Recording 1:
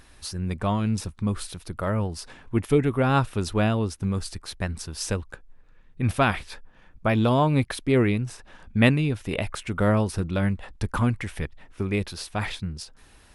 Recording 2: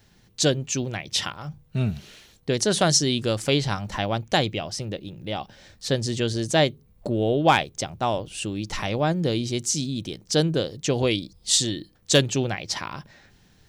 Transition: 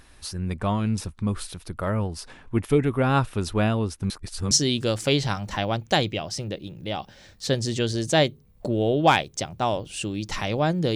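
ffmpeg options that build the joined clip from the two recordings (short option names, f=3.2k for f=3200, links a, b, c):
-filter_complex "[0:a]apad=whole_dur=10.95,atrim=end=10.95,asplit=2[a][b];[a]atrim=end=4.102[c];[b]atrim=start=4.098:end=4.512,asetpts=PTS-STARTPTS,areverse[d];[1:a]atrim=start=2.918:end=9.36[e];[c][d]acrossfade=d=0.004:c1=hsin:c2=hsin[f];[f][e]acrossfade=d=0.004:c1=hsin:c2=hsin"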